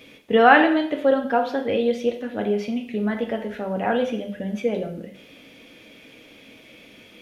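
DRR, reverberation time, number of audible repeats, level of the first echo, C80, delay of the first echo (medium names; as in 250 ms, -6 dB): 3.0 dB, 0.60 s, no echo, no echo, 12.5 dB, no echo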